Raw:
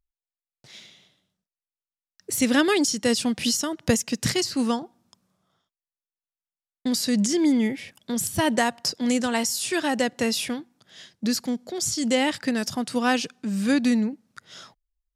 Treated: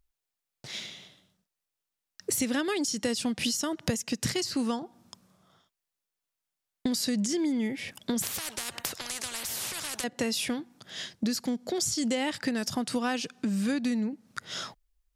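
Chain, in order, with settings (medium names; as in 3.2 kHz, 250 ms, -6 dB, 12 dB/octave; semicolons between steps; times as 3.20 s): compression 6:1, threshold -35 dBFS, peak gain reduction 18.5 dB; 8.22–10.04 s: spectrum-flattening compressor 10:1; trim +7.5 dB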